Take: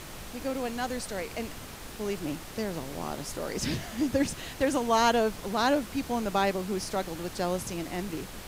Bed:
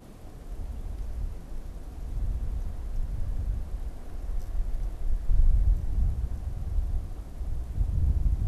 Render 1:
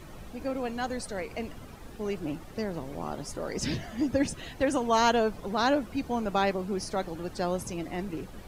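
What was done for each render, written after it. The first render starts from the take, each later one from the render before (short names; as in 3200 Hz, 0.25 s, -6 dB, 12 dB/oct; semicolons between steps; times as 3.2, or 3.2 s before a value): denoiser 12 dB, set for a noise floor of -43 dBFS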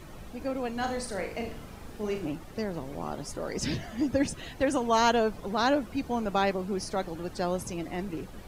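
0.73–2.28 flutter echo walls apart 6.5 m, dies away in 0.39 s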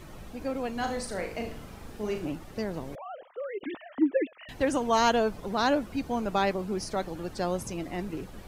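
2.95–4.49 sine-wave speech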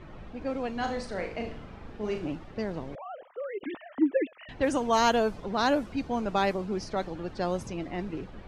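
low-pass opened by the level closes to 2400 Hz, open at -20 dBFS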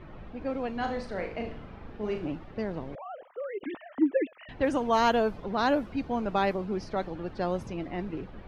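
bell 7900 Hz -11 dB 1.3 oct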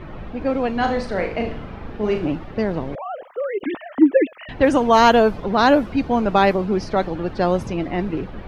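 gain +11 dB; limiter -3 dBFS, peak gain reduction 1 dB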